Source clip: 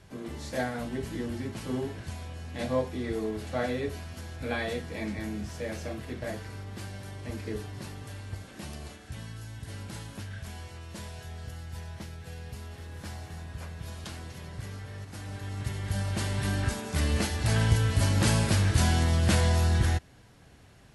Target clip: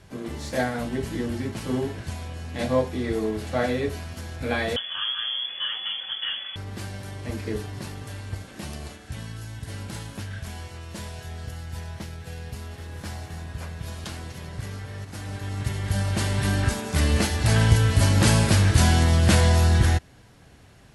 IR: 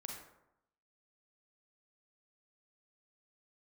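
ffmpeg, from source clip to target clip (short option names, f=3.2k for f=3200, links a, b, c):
-filter_complex "[0:a]asplit=2[a][b];[b]aeval=exprs='sgn(val(0))*max(abs(val(0))-0.00562,0)':c=same,volume=-10dB[c];[a][c]amix=inputs=2:normalize=0,asettb=1/sr,asplit=3[d][e][f];[d]atrim=end=4.764[g];[e]atrim=start=4.76:end=6.56,asetpts=PTS-STARTPTS,afade=t=in:d=0.004:c=qsin,afade=t=out:st=1.796:d=0.004:c=qsin,lowpass=f=3k:t=q:w=0.5098,lowpass=f=3k:t=q:w=0.6013,lowpass=f=3k:t=q:w=0.9,lowpass=f=3k:t=q:w=2.563,afreqshift=-3500[h];[f]atrim=start=6.556[i];[g][h]acrossfade=d=0.004:c1=hsin:c2=qsin[j];[j][i]acrossfade=d=0.004:c1=qsin:c2=hsin,volume=3.5dB"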